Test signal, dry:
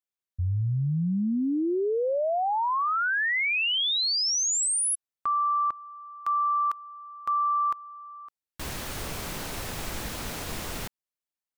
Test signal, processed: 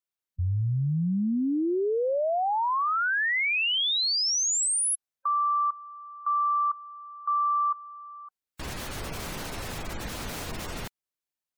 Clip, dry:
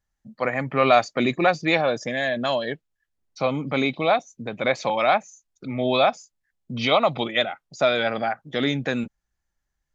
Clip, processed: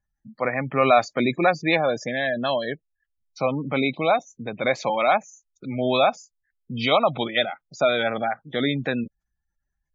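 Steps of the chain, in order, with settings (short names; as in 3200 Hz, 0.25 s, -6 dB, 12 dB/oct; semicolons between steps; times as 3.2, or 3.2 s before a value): spectral gate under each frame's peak -25 dB strong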